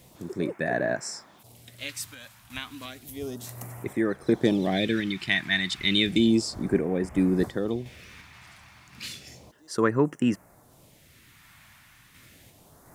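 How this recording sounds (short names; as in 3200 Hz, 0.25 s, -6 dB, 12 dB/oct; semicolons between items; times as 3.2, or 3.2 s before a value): a quantiser's noise floor 12-bit, dither triangular; random-step tremolo 2.8 Hz; phasing stages 2, 0.32 Hz, lowest notch 450–3700 Hz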